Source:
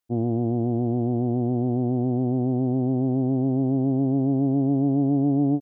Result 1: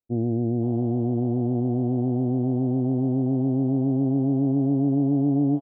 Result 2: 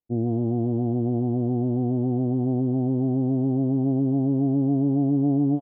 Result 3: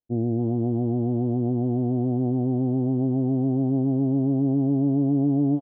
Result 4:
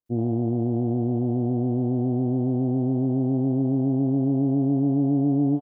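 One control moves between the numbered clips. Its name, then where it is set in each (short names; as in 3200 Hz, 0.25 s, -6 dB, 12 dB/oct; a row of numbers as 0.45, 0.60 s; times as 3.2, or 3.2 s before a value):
bands offset in time, time: 510, 150, 280, 60 ms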